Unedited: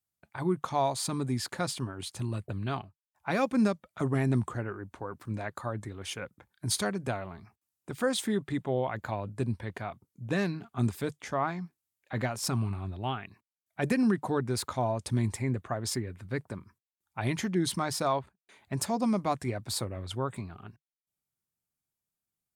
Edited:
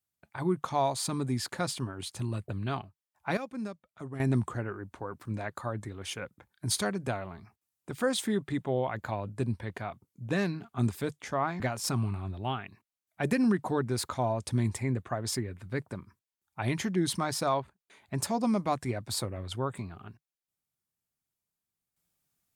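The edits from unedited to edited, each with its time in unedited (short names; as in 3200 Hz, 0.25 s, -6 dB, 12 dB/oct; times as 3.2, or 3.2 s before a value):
3.37–4.2 gain -11.5 dB
11.6–12.19 cut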